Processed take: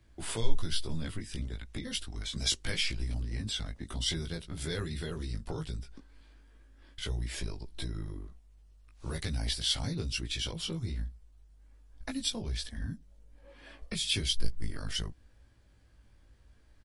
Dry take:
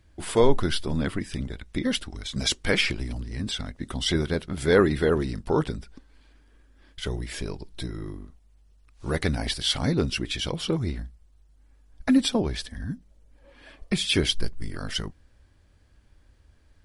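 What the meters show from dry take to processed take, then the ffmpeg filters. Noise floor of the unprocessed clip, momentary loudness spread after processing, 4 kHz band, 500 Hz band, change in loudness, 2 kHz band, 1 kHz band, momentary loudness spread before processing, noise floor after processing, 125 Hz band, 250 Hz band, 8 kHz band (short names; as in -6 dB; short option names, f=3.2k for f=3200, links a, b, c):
-59 dBFS, 13 LU, -5.0 dB, -17.5 dB, -8.5 dB, -10.5 dB, -15.0 dB, 15 LU, -60 dBFS, -6.5 dB, -14.0 dB, -3.0 dB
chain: -filter_complex "[0:a]acrossover=split=120|3000[a][b][c];[b]acompressor=threshold=-38dB:ratio=4[d];[a][d][c]amix=inputs=3:normalize=0,asplit=2[e][f];[f]adelay=18,volume=-3dB[g];[e][g]amix=inputs=2:normalize=0,volume=-4.5dB"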